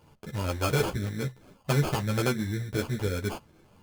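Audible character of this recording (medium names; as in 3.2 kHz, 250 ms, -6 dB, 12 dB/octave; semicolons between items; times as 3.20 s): phasing stages 8, 1.9 Hz, lowest notch 720–2900 Hz; aliases and images of a low sample rate 1.9 kHz, jitter 0%; a shimmering, thickened sound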